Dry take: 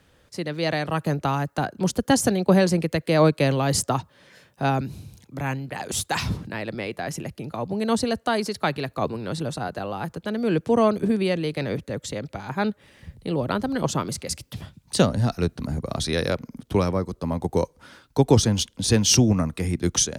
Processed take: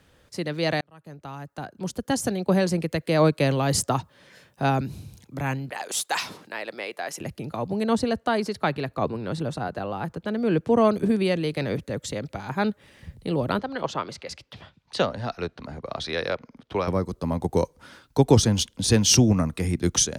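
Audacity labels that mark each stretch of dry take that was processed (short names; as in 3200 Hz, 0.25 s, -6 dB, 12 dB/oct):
0.810000	4.690000	fade in equal-power
5.710000	7.210000	HPF 490 Hz
7.830000	10.850000	high shelf 4200 Hz -8.5 dB
13.590000	16.880000	three-band isolator lows -12 dB, under 420 Hz, highs -23 dB, over 4800 Hz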